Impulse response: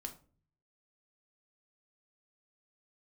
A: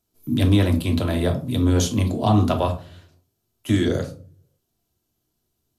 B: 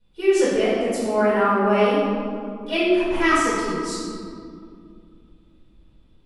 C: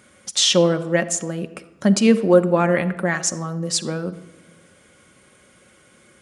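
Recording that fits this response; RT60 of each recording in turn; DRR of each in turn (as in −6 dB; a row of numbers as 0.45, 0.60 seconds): A; 0.40, 2.3, 1.2 seconds; 3.0, −14.0, 7.5 decibels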